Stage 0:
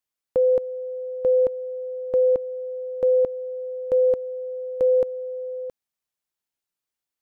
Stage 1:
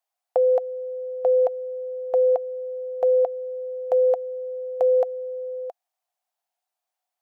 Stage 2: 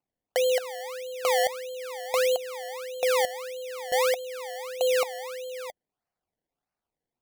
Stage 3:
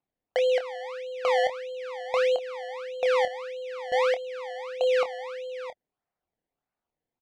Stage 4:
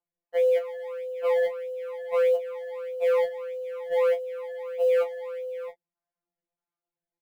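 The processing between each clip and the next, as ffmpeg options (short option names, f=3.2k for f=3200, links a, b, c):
-af "highpass=f=720:t=q:w=8.8"
-af "acrusher=samples=24:mix=1:aa=0.000001:lfo=1:lforange=24:lforate=1.6,volume=-5dB"
-filter_complex "[0:a]lowpass=3.2k,asplit=2[a][b];[b]adelay=26,volume=-10dB[c];[a][c]amix=inputs=2:normalize=0"
-af "lowpass=2.5k,acrusher=bits=7:mode=log:mix=0:aa=0.000001,afftfilt=real='re*2.83*eq(mod(b,8),0)':imag='im*2.83*eq(mod(b,8),0)':win_size=2048:overlap=0.75,volume=-3dB"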